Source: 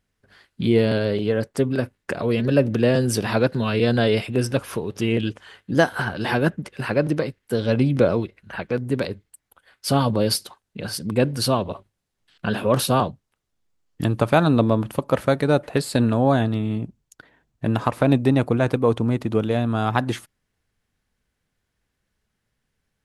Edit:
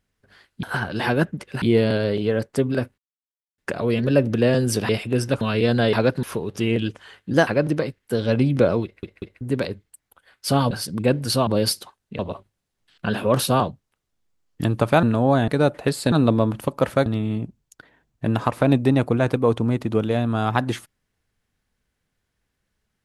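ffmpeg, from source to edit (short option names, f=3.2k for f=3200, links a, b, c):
-filter_complex "[0:a]asplit=19[a][b][c][d][e][f][g][h][i][j][k][l][m][n][o][p][q][r][s];[a]atrim=end=0.632[t];[b]atrim=start=5.878:end=6.872[u];[c]atrim=start=0.628:end=1.99,asetpts=PTS-STARTPTS,afade=t=out:st=1.358:d=0.004:c=hsin,apad=pad_dur=0.6[v];[d]atrim=start=1.99:end=3.302,asetpts=PTS-STARTPTS,afade=t=in:d=0.004:c=hsin[w];[e]atrim=start=4.118:end=4.642[x];[f]atrim=start=3.598:end=4.122[y];[g]atrim=start=3.298:end=3.602[z];[h]atrim=start=4.638:end=5.882[aa];[i]atrim=start=6.868:end=8.432[ab];[j]atrim=start=8.238:end=8.432[ac];[k]atrim=start=8.238:end=8.432[ad];[l]atrim=start=8.808:end=10.112[ae];[m]atrim=start=10.828:end=11.592[af];[n]atrim=start=10.108:end=10.832[ag];[o]atrim=start=11.588:end=14.432[ah];[p]atrim=start=16.008:end=16.462[ai];[q]atrim=start=15.368:end=16.012[aj];[r]atrim=start=14.428:end=15.372[ak];[s]atrim=start=16.458[al];[t][u]acrossfade=d=0.004:c1=hsin:c2=hsin[am];[v][w]concat=n=2:v=0:a=1[an];[am][an]acrossfade=d=0.004:c1=hsin:c2=hsin[ao];[ao][x]acrossfade=d=0.004:c1=hsin:c2=hsin[ap];[ap][y]acrossfade=d=0.004:c1=hsin:c2=hsin[aq];[aq][z]acrossfade=d=0.004:c1=hsin:c2=hsin[ar];[ar][aa]acrossfade=d=0.004:c1=hsin:c2=hsin[as];[as][ab]acrossfade=d=0.004:c1=hsin:c2=hsin[at];[at][ac]acrossfade=d=0.004:c1=hsin:c2=hsin[au];[au][ad]acrossfade=d=0.004:c1=hsin:c2=hsin[av];[av][ae]acrossfade=d=0.004:c1=hsin:c2=hsin[aw];[aw][af]acrossfade=d=0.004:c1=hsin:c2=hsin[ax];[ax][ag]acrossfade=d=0.004:c1=hsin:c2=hsin[ay];[ay][ah]acrossfade=d=0.004:c1=hsin:c2=hsin[az];[az][ai]acrossfade=d=0.004:c1=hsin:c2=hsin[ba];[ba][aj]acrossfade=d=0.004:c1=hsin:c2=hsin[bb];[bb][ak]acrossfade=d=0.004:c1=hsin:c2=hsin[bc];[bc][al]acrossfade=d=0.004:c1=hsin:c2=hsin"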